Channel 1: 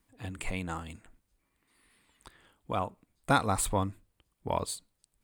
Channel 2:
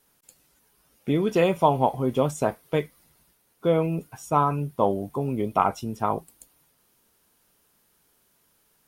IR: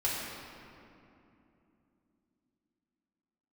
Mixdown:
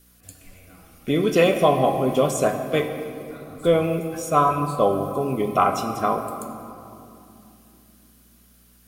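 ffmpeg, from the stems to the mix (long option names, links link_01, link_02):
-filter_complex "[0:a]acompressor=threshold=-37dB:ratio=2,volume=-4.5dB,asplit=2[link_01][link_02];[link_02]volume=-15dB[link_03];[1:a]highshelf=frequency=2000:gain=8.5,aeval=exprs='val(0)+0.00158*(sin(2*PI*60*n/s)+sin(2*PI*2*60*n/s)/2+sin(2*PI*3*60*n/s)/3+sin(2*PI*4*60*n/s)/4+sin(2*PI*5*60*n/s)/5)':channel_layout=same,volume=-2dB,asplit=3[link_04][link_05][link_06];[link_05]volume=-10dB[link_07];[link_06]apad=whole_len=230720[link_08];[link_01][link_08]sidechaingate=range=-33dB:threshold=-44dB:ratio=16:detection=peak[link_09];[2:a]atrim=start_sample=2205[link_10];[link_03][link_07]amix=inputs=2:normalize=0[link_11];[link_11][link_10]afir=irnorm=-1:irlink=0[link_12];[link_09][link_04][link_12]amix=inputs=3:normalize=0,asuperstop=centerf=900:order=20:qfactor=5.7,equalizer=frequency=710:width_type=o:width=2.2:gain=3"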